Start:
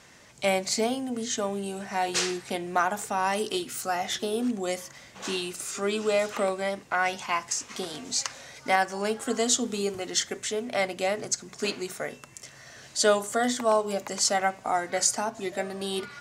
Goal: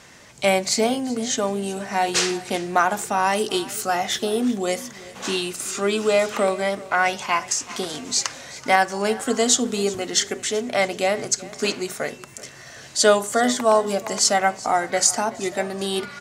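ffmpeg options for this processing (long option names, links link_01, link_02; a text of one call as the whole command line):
ffmpeg -i in.wav -af "aecho=1:1:379|758|1137:0.112|0.0359|0.0115,volume=6dB" out.wav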